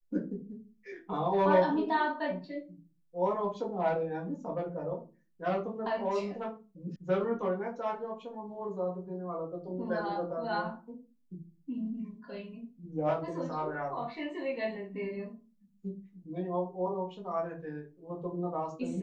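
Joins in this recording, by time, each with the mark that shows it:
6.96 sound cut off

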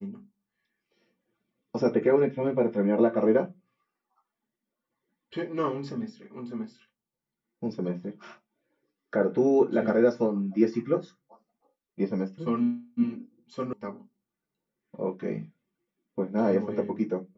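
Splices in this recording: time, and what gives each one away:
13.73 sound cut off

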